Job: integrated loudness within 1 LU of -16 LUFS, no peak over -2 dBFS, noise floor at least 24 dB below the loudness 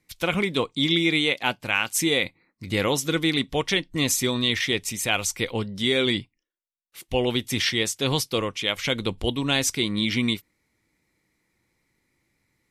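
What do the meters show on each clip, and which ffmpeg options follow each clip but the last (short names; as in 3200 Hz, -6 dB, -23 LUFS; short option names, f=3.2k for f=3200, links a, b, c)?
loudness -24.0 LUFS; peak -6.5 dBFS; loudness target -16.0 LUFS
-> -af "volume=8dB,alimiter=limit=-2dB:level=0:latency=1"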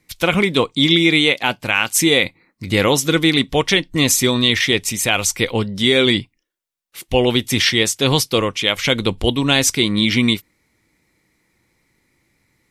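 loudness -16.0 LUFS; peak -2.0 dBFS; noise floor -72 dBFS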